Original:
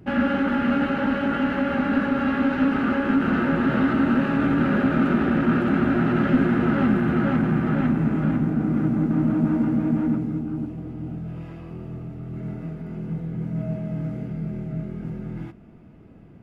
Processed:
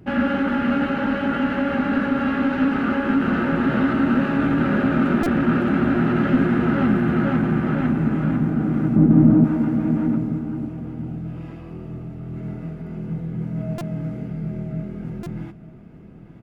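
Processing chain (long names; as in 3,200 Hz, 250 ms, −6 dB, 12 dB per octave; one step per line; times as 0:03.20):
0:08.96–0:09.44: tilt shelving filter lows +8 dB, about 1,100 Hz
single-tap delay 891 ms −14.5 dB
buffer that repeats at 0:05.23/0:13.78/0:15.23, samples 128, times 10
level +1 dB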